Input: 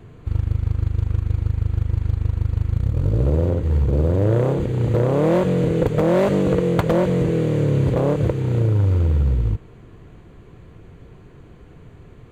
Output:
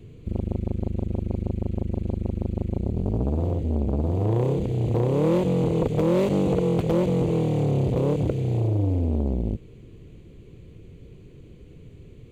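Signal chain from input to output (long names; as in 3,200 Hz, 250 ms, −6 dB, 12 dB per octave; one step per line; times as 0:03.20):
flat-topped bell 1,100 Hz −13.5 dB
saturating transformer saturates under 330 Hz
level −1.5 dB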